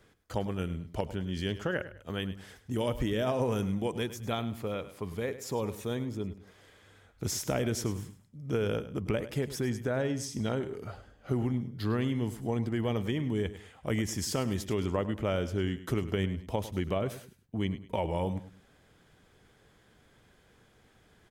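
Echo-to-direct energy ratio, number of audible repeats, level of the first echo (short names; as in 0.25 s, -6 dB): -13.5 dB, 2, -14.0 dB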